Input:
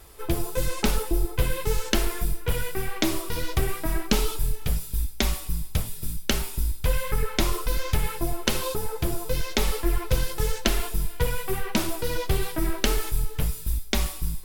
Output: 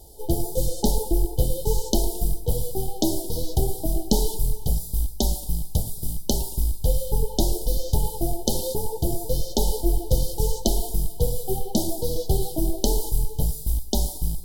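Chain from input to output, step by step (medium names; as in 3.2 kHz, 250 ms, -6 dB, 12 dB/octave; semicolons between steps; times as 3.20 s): rattle on loud lows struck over -34 dBFS, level -24 dBFS; brick-wall FIR band-stop 930–3000 Hz; peaking EQ 3.3 kHz -12 dB 0.27 oct; modulated delay 112 ms, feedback 53%, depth 164 cents, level -21 dB; trim +2.5 dB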